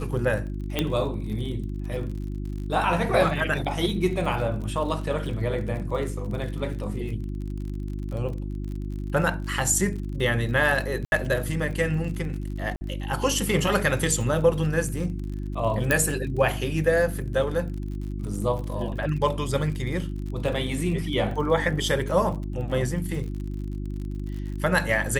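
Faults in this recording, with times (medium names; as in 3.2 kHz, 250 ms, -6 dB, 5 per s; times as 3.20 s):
crackle 46 per s -34 dBFS
hum 50 Hz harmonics 7 -31 dBFS
0.79 s: pop -9 dBFS
11.05–11.12 s: dropout 71 ms
12.76–12.81 s: dropout 50 ms
15.91 s: pop -7 dBFS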